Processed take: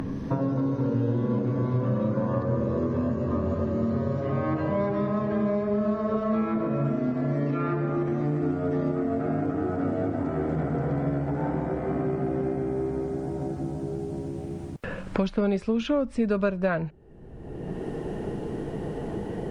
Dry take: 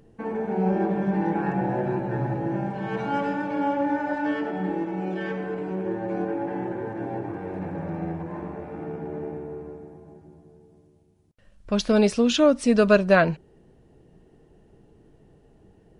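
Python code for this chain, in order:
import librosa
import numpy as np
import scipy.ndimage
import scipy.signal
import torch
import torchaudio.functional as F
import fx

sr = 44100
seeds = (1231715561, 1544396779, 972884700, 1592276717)

y = fx.speed_glide(x, sr, from_pct=60, to_pct=104)
y = fx.band_squash(y, sr, depth_pct=100)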